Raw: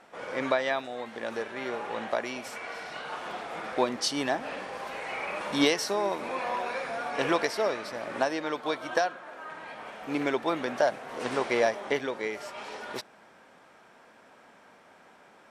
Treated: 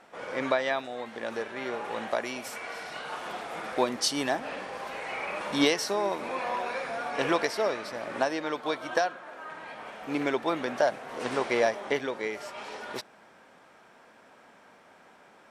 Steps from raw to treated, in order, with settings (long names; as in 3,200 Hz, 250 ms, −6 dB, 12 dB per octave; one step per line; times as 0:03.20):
0:01.84–0:04.40: high-shelf EQ 9,900 Hz +10.5 dB